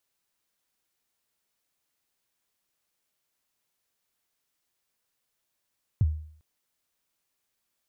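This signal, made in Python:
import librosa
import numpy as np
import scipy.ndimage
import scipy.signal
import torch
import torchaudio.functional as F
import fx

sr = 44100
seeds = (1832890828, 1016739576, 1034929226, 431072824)

y = fx.drum_kick(sr, seeds[0], length_s=0.4, level_db=-16, start_hz=130.0, end_hz=77.0, sweep_ms=36.0, decay_s=0.56, click=False)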